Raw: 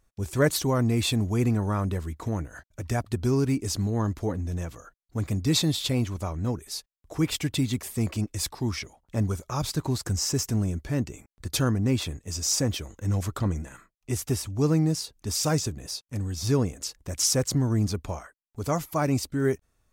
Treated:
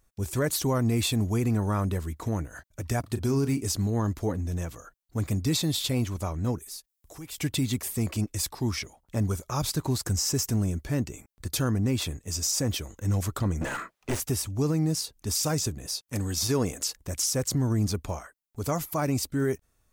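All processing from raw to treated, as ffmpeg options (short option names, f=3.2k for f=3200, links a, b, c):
-filter_complex "[0:a]asettb=1/sr,asplit=3[a][b][c];[a]atrim=end=3.004[d];[b]atrim=start=3:end=3.62,asetpts=PTS-STARTPTS,afade=t=in:d=0.004:c=qsin,afade=t=out:st=0.616:d=0.004:c=qsin,highpass=73,asplit=2[e][f];[f]adelay=36,volume=-11.5dB[g];[e][g]amix=inputs=2:normalize=0,atrim=end_sample=27342[h];[c]atrim=start=3.616[i];[d][h]acrossfade=d=0.004:c1=hsin:c2=qsin[j];[j][i]acrossfade=d=0.004:c1=qsin:c2=hsin,asettb=1/sr,asplit=3[k][l][m];[k]atrim=end=6.584[n];[l]atrim=start=6.58:end=7.38,asetpts=PTS-STARTPTS,afade=t=in:d=0.004:c=qsin,afade=t=out:st=0.796:d=0.004:c=qsin,highshelf=f=4.1k:g=10,acompressor=threshold=-50dB:ratio=2:attack=3.2:release=140:knee=1:detection=peak,aeval=exprs='(tanh(39.8*val(0)+0.2)-tanh(0.2))/39.8':c=same[o];[m]atrim=start=7.376[p];[n][o]acrossfade=d=0.004:c1=hsin:c2=qsin[q];[q][p]acrossfade=d=0.004:c1=qsin:c2=hsin,asettb=1/sr,asplit=3[r][s][t];[r]atrim=end=13.614[u];[s]atrim=start=13.61:end=14.2,asetpts=PTS-STARTPTS,afade=t=in:d=0.004:c=qsin,afade=t=out:st=0.586:d=0.004:c=qsin,asplit=2[v][w];[w]highpass=f=720:p=1,volume=31dB,asoftclip=type=tanh:threshold=-15.5dB[x];[v][x]amix=inputs=2:normalize=0,lowpass=f=1.1k:p=1,volume=-6dB,aeval=exprs='clip(val(0),-1,0.0266)':c=same[y];[t]atrim=start=14.196[z];[u][y]acrossfade=d=0.004:c1=hsin:c2=qsin[aa];[aa][z]acrossfade=d=0.004:c1=qsin:c2=hsin,asettb=1/sr,asplit=3[ab][ac][ad];[ab]atrim=end=16.084[ae];[ac]atrim=start=16.08:end=16.97,asetpts=PTS-STARTPTS,afade=t=in:d=0.004:c=qsin,afade=t=out:st=0.886:d=0.004:c=qsin,lowshelf=f=210:g=-9.5,acontrast=74[af];[ad]atrim=start=16.966[ag];[ae][af]acrossfade=d=0.004:c1=hsin:c2=qsin[ah];[ah][ag]acrossfade=d=0.004:c1=qsin:c2=hsin,highshelf=f=9.2k:g=8,alimiter=limit=-17.5dB:level=0:latency=1:release=71"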